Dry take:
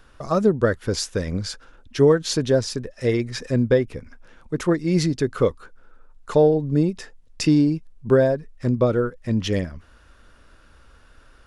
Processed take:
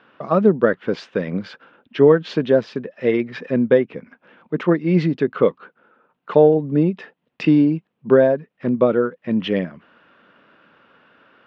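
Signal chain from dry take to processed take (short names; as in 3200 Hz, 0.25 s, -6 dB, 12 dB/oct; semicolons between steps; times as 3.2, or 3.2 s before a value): Chebyshev band-pass 170–3000 Hz, order 3; gain +4 dB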